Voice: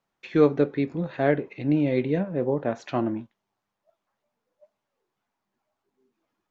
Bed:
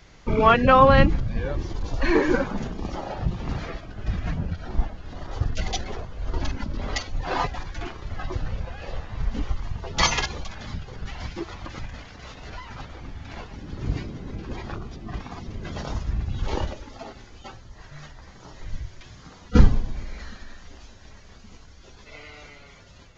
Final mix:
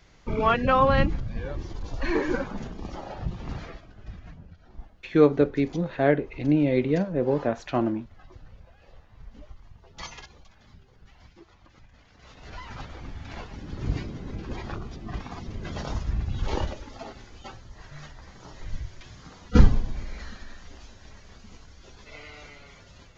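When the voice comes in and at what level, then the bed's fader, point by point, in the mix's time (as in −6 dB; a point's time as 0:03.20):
4.80 s, +1.0 dB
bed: 0:03.58 −5.5 dB
0:04.43 −19 dB
0:11.88 −19 dB
0:12.63 −1 dB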